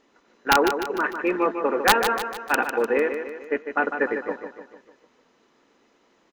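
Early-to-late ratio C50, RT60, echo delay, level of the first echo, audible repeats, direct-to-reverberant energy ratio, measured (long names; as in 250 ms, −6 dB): no reverb audible, no reverb audible, 150 ms, −8.0 dB, 5, no reverb audible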